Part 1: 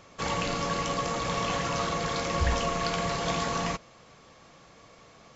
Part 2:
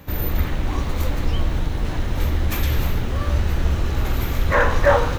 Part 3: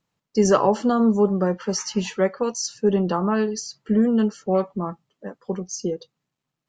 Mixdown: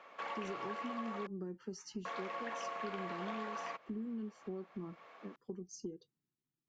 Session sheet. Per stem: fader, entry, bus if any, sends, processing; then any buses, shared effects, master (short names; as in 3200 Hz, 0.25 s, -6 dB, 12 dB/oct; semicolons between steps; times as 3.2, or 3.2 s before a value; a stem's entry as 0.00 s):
+0.5 dB, 0.00 s, muted 1.27–2.05, no send, Chebyshev high-pass 210 Hz, order 3; three-band isolator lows -17 dB, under 490 Hz, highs -24 dB, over 2900 Hz
off
-17.5 dB, 0.00 s, no send, resonant low shelf 450 Hz +6.5 dB, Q 3; compressor 2.5:1, threshold -13 dBFS, peak gain reduction 6 dB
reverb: off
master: compressor 2.5:1, threshold -44 dBFS, peak gain reduction 12.5 dB